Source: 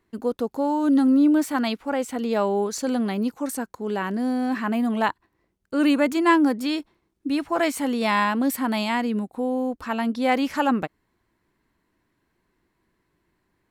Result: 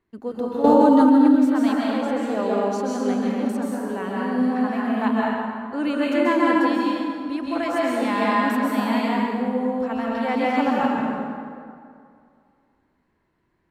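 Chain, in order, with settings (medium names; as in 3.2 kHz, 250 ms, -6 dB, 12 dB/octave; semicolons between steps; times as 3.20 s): low-pass 3.4 kHz 6 dB/octave; plate-style reverb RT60 2.3 s, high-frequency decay 0.6×, pre-delay 120 ms, DRR -5.5 dB; 0.64–1.35 s: level flattener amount 100%; trim -5 dB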